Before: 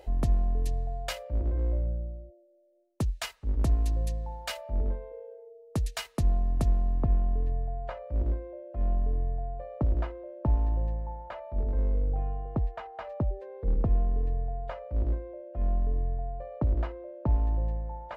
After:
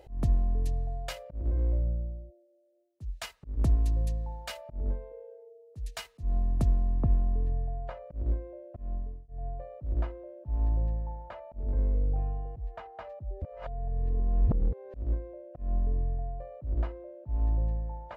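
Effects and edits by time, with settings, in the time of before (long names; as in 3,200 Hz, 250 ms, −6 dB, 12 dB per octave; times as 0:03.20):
0:08.66–0:09.28: fade out
0:13.42–0:14.94: reverse
whole clip: high-pass filter 62 Hz 6 dB per octave; low-shelf EQ 250 Hz +9 dB; volume swells 189 ms; level −4.5 dB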